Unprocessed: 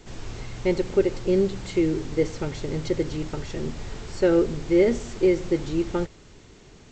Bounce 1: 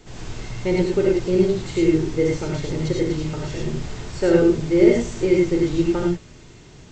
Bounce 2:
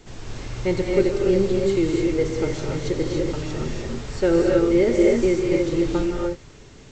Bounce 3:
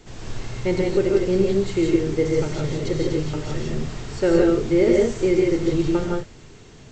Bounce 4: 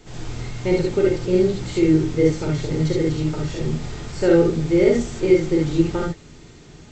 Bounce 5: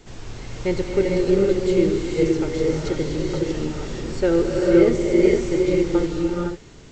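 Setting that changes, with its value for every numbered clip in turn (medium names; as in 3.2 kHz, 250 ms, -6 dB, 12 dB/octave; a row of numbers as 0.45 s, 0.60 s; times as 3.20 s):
gated-style reverb, gate: 130 ms, 320 ms, 200 ms, 90 ms, 530 ms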